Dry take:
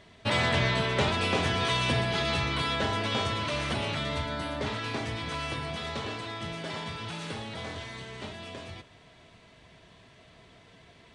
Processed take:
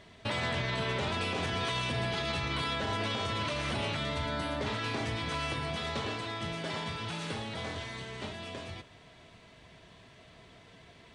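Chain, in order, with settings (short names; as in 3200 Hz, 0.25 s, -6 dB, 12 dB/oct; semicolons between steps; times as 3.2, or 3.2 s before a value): limiter -24 dBFS, peak gain reduction 10.5 dB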